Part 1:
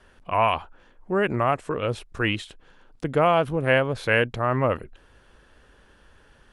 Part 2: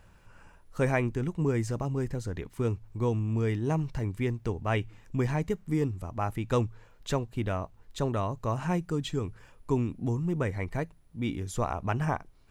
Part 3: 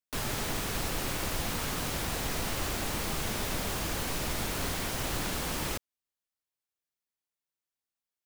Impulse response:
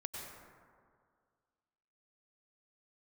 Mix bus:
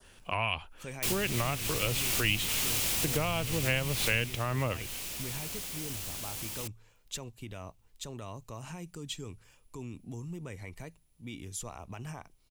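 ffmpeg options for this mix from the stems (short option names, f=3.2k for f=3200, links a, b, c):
-filter_complex "[0:a]volume=-3.5dB[a];[1:a]alimiter=limit=-24dB:level=0:latency=1,adelay=50,volume=-9.5dB[b];[2:a]adelay=900,volume=-5.5dB,afade=t=out:st=4.14:d=0.24:silence=0.334965[c];[a][b][c]amix=inputs=3:normalize=0,adynamicequalizer=threshold=0.00891:dfrequency=2500:dqfactor=1.1:tfrequency=2500:tqfactor=1.1:attack=5:release=100:ratio=0.375:range=3:mode=boostabove:tftype=bell,acrossover=split=170[d][e];[e]acompressor=threshold=-32dB:ratio=4[f];[d][f]amix=inputs=2:normalize=0,aexciter=amount=3.3:drive=3.9:freq=2.3k"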